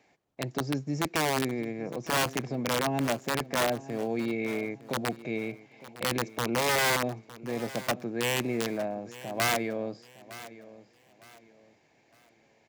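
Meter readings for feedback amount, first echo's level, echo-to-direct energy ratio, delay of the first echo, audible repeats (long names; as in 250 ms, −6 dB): 31%, −17.0 dB, −16.5 dB, 909 ms, 2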